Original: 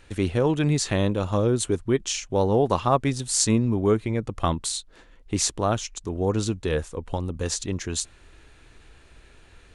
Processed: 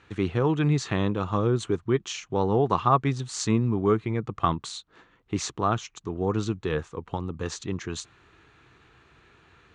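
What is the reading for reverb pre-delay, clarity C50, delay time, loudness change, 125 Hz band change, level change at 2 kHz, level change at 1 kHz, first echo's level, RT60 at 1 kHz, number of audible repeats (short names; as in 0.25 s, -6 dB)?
none, none, none, -2.0 dB, -1.5 dB, -1.5 dB, +1.5 dB, none, none, none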